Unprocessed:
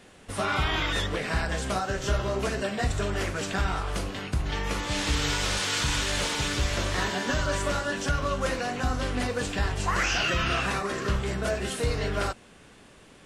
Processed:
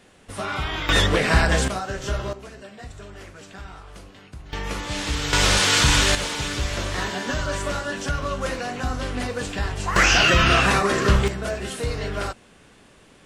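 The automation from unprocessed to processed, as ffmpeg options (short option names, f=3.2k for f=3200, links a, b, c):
-af "asetnsamples=n=441:p=0,asendcmd='0.89 volume volume 10dB;1.68 volume volume 0dB;2.33 volume volume -12dB;4.53 volume volume 0.5dB;5.33 volume volume 9.5dB;6.15 volume volume 1dB;9.96 volume volume 9.5dB;11.28 volume volume 0.5dB',volume=-1dB"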